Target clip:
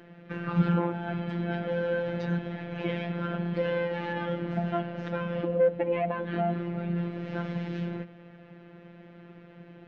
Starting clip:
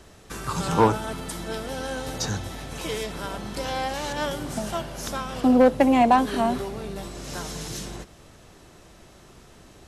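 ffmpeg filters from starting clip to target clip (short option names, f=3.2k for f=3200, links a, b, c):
-af "alimiter=limit=-18dB:level=0:latency=1:release=289,highpass=130,equalizer=f=190:t=q:w=4:g=9,equalizer=f=520:t=q:w=4:g=3,equalizer=f=780:t=q:w=4:g=-5,equalizer=f=1.1k:t=q:w=4:g=-9,lowpass=f=2.5k:w=0.5412,lowpass=f=2.5k:w=1.3066,afftfilt=real='hypot(re,im)*cos(PI*b)':imag='0':win_size=1024:overlap=0.75,volume=4dB"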